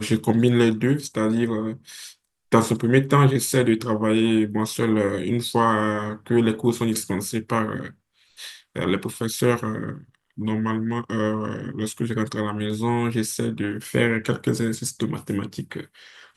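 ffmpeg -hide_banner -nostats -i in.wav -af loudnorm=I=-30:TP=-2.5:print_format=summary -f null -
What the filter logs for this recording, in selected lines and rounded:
Input Integrated:    -23.3 LUFS
Input True Peak:      -2.6 dBTP
Input LRA:             5.7 LU
Input Threshold:     -33.9 LUFS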